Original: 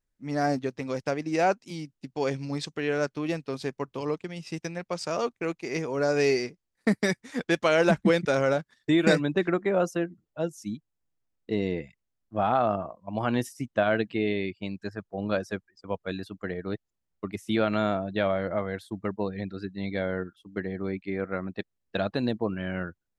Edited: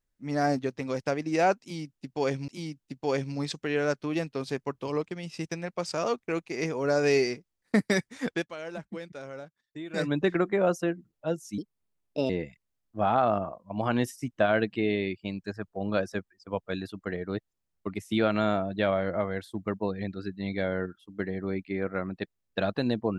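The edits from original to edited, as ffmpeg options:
-filter_complex "[0:a]asplit=6[a][b][c][d][e][f];[a]atrim=end=2.482[g];[b]atrim=start=1.608:end=7.6,asetpts=PTS-STARTPTS,afade=t=out:st=5.822:d=0.17:silence=0.141254[h];[c]atrim=start=7.6:end=9.07,asetpts=PTS-STARTPTS,volume=-17dB[i];[d]atrim=start=9.07:end=10.714,asetpts=PTS-STARTPTS,afade=t=in:d=0.17:silence=0.141254[j];[e]atrim=start=10.71:end=11.67,asetpts=PTS-STARTPTS,asetrate=59094,aresample=44100,atrim=end_sample=31594,asetpts=PTS-STARTPTS[k];[f]atrim=start=11.666[l];[h][i][j]concat=n=3:v=0:a=1[m];[g][m]acrossfade=d=0.004:c1=hsin:c2=hsin[n];[n][k]acrossfade=d=0.004:c1=hsin:c2=hsin[o];[o][l]acrossfade=d=0.004:c1=hsin:c2=hsin"

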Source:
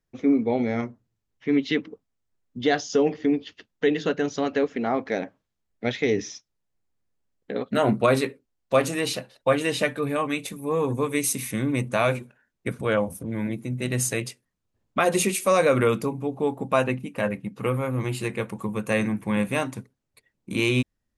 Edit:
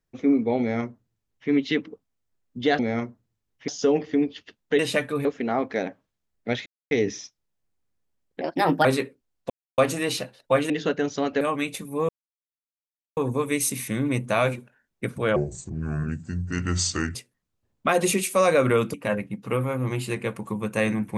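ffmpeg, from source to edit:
-filter_complex "[0:a]asplit=15[a][b][c][d][e][f][g][h][i][j][k][l][m][n][o];[a]atrim=end=2.792[p];[b]atrim=start=0.598:end=1.492[q];[c]atrim=start=2.788:end=3.902[r];[d]atrim=start=9.658:end=10.122[s];[e]atrim=start=4.608:end=6.02,asetpts=PTS-STARTPTS,afade=t=out:st=1.408:d=0.004:c=hsin,apad=pad_dur=0.25[t];[f]atrim=start=6.02:end=7.524,asetpts=PTS-STARTPTS,afade=t=in:d=0.004:c=hsin[u];[g]atrim=start=7.52:end=8.09,asetpts=PTS-STARTPTS,asetrate=57330,aresample=44100,atrim=end_sample=19336,asetpts=PTS-STARTPTS[v];[h]atrim=start=8.086:end=8.74,asetpts=PTS-STARTPTS,afade=t=out:st=0.65:d=0.004:c=hsin,apad=pad_dur=0.28[w];[i]atrim=start=8.74:end=9.662,asetpts=PTS-STARTPTS,afade=t=in:d=0.004:c=hsin[x];[j]atrim=start=3.898:end=4.612[y];[k]atrim=start=10.118:end=10.8,asetpts=PTS-STARTPTS,afade=t=out:st=0.678:d=0.004:c=hsin,apad=pad_dur=1.08[z];[l]atrim=start=10.8:end=12.994,asetpts=PTS-STARTPTS,afade=t=in:d=0.004:c=hsin[aa];[m]atrim=start=12.99:end=14.26,asetpts=PTS-STARTPTS,asetrate=31311,aresample=44100,atrim=end_sample=78883,asetpts=PTS-STARTPTS[ab];[n]atrim=start=14.256:end=16.052[ac];[o]atrim=start=17.068[ad];[p][q]acrossfade=d=0.004:c1=hsin:c2=hsin[ae];[ae][r]acrossfade=d=0.004:c1=hsin:c2=hsin[af];[af][s]acrossfade=d=0.004:c1=hsin:c2=hsin[ag];[t][u]concat=n=2:v=0:a=1[ah];[ag][ah]acrossfade=d=0.004:c1=hsin:c2=hsin[ai];[ai][v]acrossfade=d=0.004:c1=hsin:c2=hsin[aj];[w][x]concat=n=2:v=0:a=1[ak];[aj][ak]acrossfade=d=0.004:c1=hsin:c2=hsin[al];[al][y]acrossfade=d=0.004:c1=hsin:c2=hsin[am];[z][aa]concat=n=2:v=0:a=1[an];[am][an]acrossfade=d=0.004:c1=hsin:c2=hsin[ao];[ao][ab]acrossfade=d=0.004:c1=hsin:c2=hsin[ap];[ap][ac]acrossfade=d=0.004:c1=hsin:c2=hsin[aq];[aq][ad]acrossfade=d=0.004:c1=hsin:c2=hsin"

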